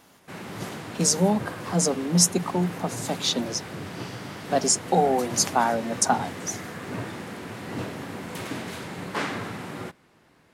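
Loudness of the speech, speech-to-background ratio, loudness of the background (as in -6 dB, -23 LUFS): -24.0 LUFS, 11.5 dB, -35.5 LUFS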